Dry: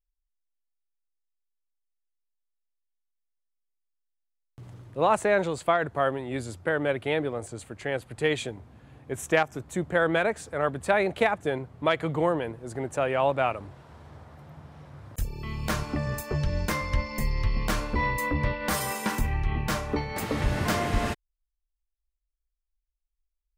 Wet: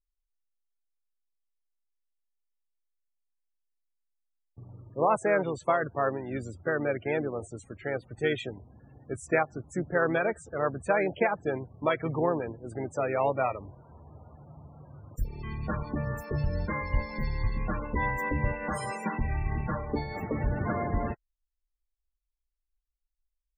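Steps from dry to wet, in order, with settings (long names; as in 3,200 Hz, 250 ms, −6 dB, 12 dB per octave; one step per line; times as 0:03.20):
spectral peaks only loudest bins 32
pitch-shifted copies added −4 semitones −10 dB
level −2.5 dB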